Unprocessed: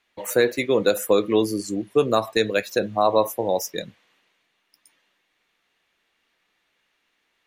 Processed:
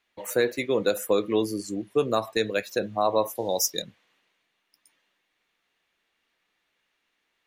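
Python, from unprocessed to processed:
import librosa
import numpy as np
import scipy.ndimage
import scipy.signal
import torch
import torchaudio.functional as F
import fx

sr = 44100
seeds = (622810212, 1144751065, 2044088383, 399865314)

y = fx.high_shelf_res(x, sr, hz=3300.0, db=9.5, q=1.5, at=(3.35, 3.82))
y = y * librosa.db_to_amplitude(-4.5)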